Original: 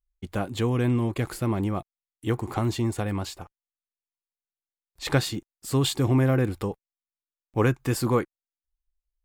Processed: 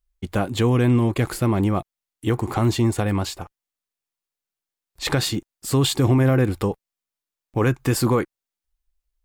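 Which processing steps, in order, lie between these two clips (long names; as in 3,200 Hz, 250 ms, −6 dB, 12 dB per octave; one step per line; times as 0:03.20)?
brickwall limiter −17.5 dBFS, peak gain reduction 8 dB
level +6.5 dB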